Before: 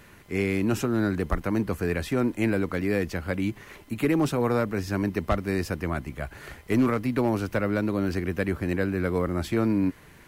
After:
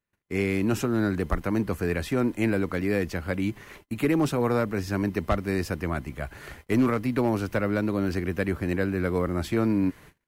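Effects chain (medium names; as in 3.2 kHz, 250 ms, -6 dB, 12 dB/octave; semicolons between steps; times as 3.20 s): gate -46 dBFS, range -37 dB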